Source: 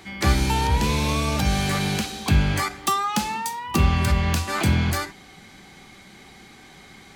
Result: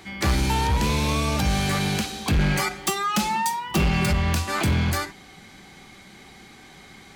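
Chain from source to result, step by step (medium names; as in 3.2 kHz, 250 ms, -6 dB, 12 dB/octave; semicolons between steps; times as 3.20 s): 2.38–4.13 s: comb 5.5 ms, depth 82%; hard clipper -16.5 dBFS, distortion -13 dB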